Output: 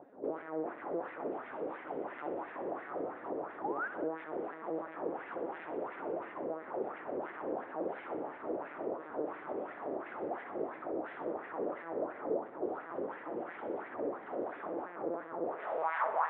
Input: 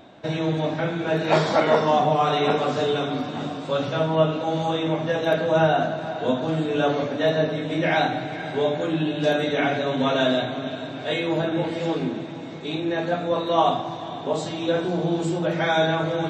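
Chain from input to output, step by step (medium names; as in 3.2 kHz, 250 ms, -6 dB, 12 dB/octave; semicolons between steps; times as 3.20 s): tilt EQ -4 dB/octave; in parallel at +1.5 dB: compressor with a negative ratio -22 dBFS, ratio -0.5; on the sum: wavefolder -19 dBFS; LPC vocoder at 8 kHz pitch kept; painted sound rise, 3.64–3.88 s, 780–1700 Hz -18 dBFS; wah-wah 2.9 Hz 460–2000 Hz, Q 3.2; on a send: thinning echo 63 ms, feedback 52%, level -11 dB; on the sum: band-pass sweep 320 Hz -> 970 Hz, 15.47–15.99 s; trim +5 dB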